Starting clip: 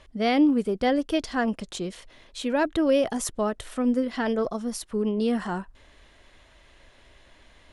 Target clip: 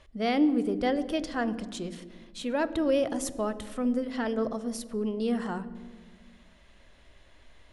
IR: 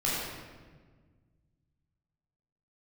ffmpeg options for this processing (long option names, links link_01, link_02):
-filter_complex "[0:a]asplit=2[link_01][link_02];[1:a]atrim=start_sample=2205,lowshelf=frequency=500:gain=10[link_03];[link_02][link_03]afir=irnorm=-1:irlink=0,volume=-25dB[link_04];[link_01][link_04]amix=inputs=2:normalize=0,volume=-5dB"